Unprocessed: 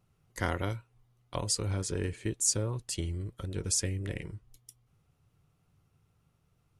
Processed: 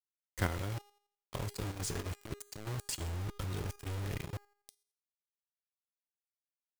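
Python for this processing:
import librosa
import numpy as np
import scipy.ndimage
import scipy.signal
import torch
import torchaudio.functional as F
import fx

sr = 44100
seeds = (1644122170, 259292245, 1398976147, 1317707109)

y = fx.over_compress(x, sr, threshold_db=-36.0, ratio=-0.5, at=(1.35, 4.02), fade=0.02)
y = fx.low_shelf(y, sr, hz=160.0, db=8.0)
y = fx.quant_dither(y, sr, seeds[0], bits=6, dither='none')
y = fx.comb_fb(y, sr, f0_hz=410.0, decay_s=0.56, harmonics='all', damping=0.0, mix_pct=70)
y = fx.level_steps(y, sr, step_db=9)
y = F.gain(torch.from_numpy(y), 8.0).numpy()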